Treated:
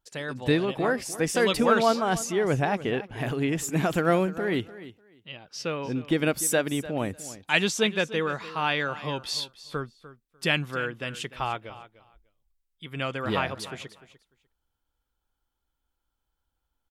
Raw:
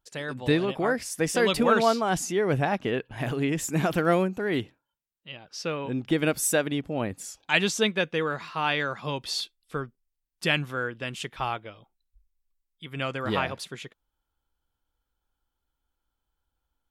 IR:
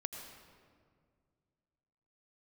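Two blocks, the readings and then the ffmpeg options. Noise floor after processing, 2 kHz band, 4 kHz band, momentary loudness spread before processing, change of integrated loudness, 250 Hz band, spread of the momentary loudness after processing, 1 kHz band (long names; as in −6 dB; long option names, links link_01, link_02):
−81 dBFS, 0.0 dB, 0.0 dB, 14 LU, 0.0 dB, 0.0 dB, 14 LU, 0.0 dB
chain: -af "aecho=1:1:298|596:0.158|0.0269"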